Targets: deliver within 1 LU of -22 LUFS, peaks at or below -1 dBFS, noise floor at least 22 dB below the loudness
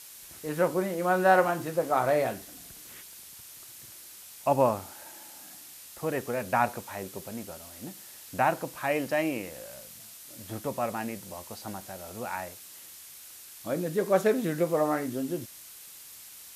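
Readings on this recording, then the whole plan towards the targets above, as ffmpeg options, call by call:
noise floor -48 dBFS; noise floor target -51 dBFS; loudness -29.0 LUFS; peak -8.5 dBFS; loudness target -22.0 LUFS
-> -af "afftdn=nr=6:nf=-48"
-af "volume=7dB"

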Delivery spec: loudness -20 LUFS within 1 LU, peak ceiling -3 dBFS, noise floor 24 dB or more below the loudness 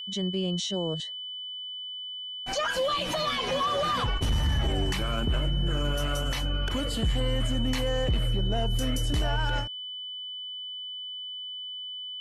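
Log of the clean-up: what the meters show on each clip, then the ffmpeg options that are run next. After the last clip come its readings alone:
steady tone 3000 Hz; tone level -35 dBFS; loudness -29.5 LUFS; peak -18.0 dBFS; loudness target -20.0 LUFS
-> -af "bandreject=f=3k:w=30"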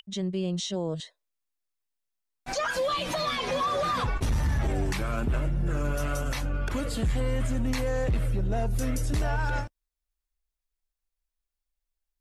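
steady tone none; loudness -29.0 LUFS; peak -19.5 dBFS; loudness target -20.0 LUFS
-> -af "volume=9dB"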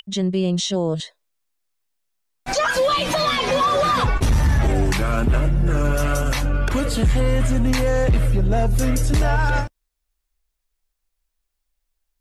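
loudness -20.0 LUFS; peak -10.5 dBFS; noise floor -77 dBFS

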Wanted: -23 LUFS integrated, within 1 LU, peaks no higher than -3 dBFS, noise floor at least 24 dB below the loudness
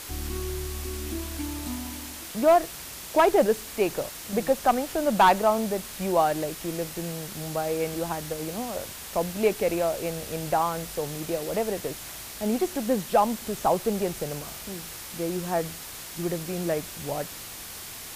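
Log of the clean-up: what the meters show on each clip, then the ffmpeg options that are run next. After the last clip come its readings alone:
noise floor -40 dBFS; noise floor target -52 dBFS; loudness -27.5 LUFS; peak -10.5 dBFS; loudness target -23.0 LUFS
-> -af "afftdn=nr=12:nf=-40"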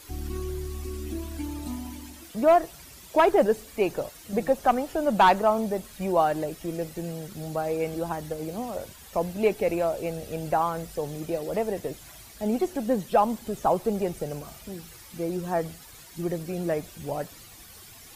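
noise floor -48 dBFS; noise floor target -52 dBFS
-> -af "afftdn=nr=6:nf=-48"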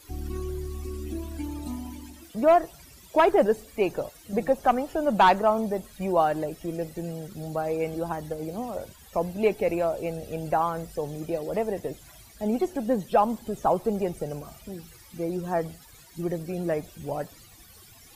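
noise floor -52 dBFS; loudness -27.5 LUFS; peak -11.0 dBFS; loudness target -23.0 LUFS
-> -af "volume=4.5dB"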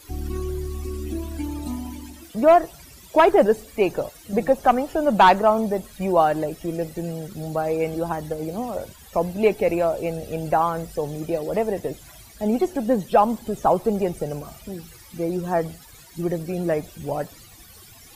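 loudness -23.0 LUFS; peak -6.5 dBFS; noise floor -47 dBFS

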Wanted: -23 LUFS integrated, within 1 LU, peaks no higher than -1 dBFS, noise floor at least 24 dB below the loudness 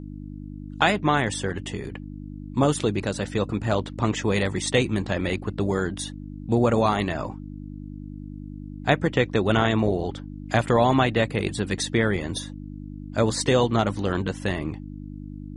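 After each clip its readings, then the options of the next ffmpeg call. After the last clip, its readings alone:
hum 50 Hz; harmonics up to 300 Hz; hum level -34 dBFS; loudness -24.5 LUFS; peak -4.0 dBFS; loudness target -23.0 LUFS
-> -af "bandreject=f=50:t=h:w=4,bandreject=f=100:t=h:w=4,bandreject=f=150:t=h:w=4,bandreject=f=200:t=h:w=4,bandreject=f=250:t=h:w=4,bandreject=f=300:t=h:w=4"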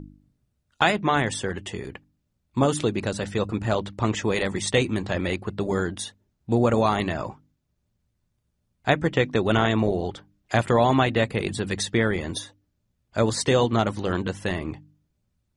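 hum none; loudness -24.5 LUFS; peak -4.0 dBFS; loudness target -23.0 LUFS
-> -af "volume=1.5dB"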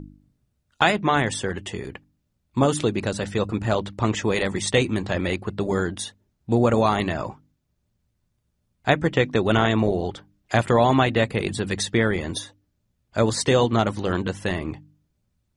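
loudness -23.0 LUFS; peak -2.5 dBFS; noise floor -73 dBFS

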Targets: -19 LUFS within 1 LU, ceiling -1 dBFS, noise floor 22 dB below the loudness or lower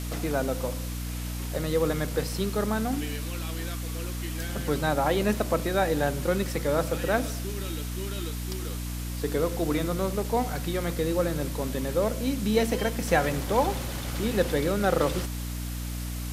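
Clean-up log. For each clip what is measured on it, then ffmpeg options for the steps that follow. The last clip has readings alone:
hum 60 Hz; harmonics up to 300 Hz; hum level -31 dBFS; noise floor -33 dBFS; noise floor target -51 dBFS; loudness -28.5 LUFS; peak -8.0 dBFS; loudness target -19.0 LUFS
-> -af "bandreject=f=60:t=h:w=4,bandreject=f=120:t=h:w=4,bandreject=f=180:t=h:w=4,bandreject=f=240:t=h:w=4,bandreject=f=300:t=h:w=4"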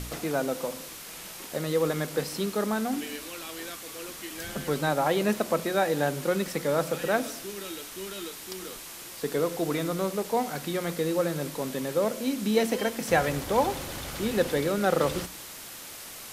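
hum none; noise floor -43 dBFS; noise floor target -51 dBFS
-> -af "afftdn=nr=8:nf=-43"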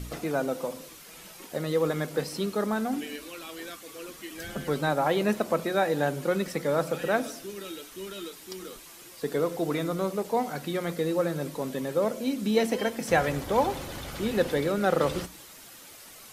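noise floor -48 dBFS; noise floor target -51 dBFS
-> -af "afftdn=nr=6:nf=-48"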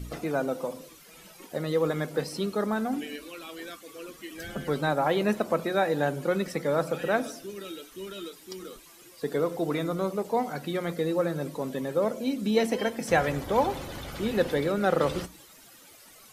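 noise floor -53 dBFS; loudness -28.5 LUFS; peak -9.0 dBFS; loudness target -19.0 LUFS
-> -af "volume=9.5dB,alimiter=limit=-1dB:level=0:latency=1"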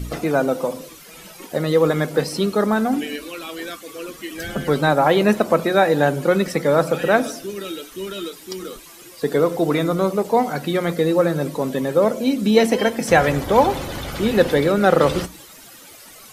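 loudness -19.0 LUFS; peak -1.0 dBFS; noise floor -43 dBFS

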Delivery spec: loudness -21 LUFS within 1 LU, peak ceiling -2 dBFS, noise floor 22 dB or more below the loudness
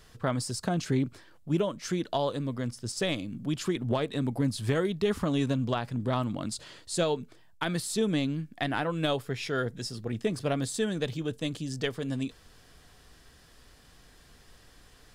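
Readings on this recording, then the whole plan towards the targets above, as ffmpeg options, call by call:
loudness -31.0 LUFS; peak -15.5 dBFS; loudness target -21.0 LUFS
-> -af "volume=10dB"

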